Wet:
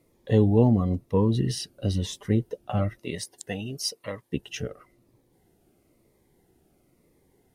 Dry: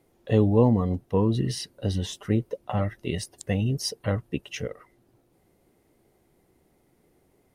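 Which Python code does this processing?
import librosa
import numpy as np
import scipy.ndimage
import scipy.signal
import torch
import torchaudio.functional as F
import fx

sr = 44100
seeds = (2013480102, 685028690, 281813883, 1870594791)

y = fx.highpass(x, sr, hz=fx.line((2.97, 260.0), (4.31, 1000.0)), slope=6, at=(2.97, 4.31), fade=0.02)
y = fx.notch_cascade(y, sr, direction='falling', hz=1.0)
y = F.gain(torch.from_numpy(y), 1.0).numpy()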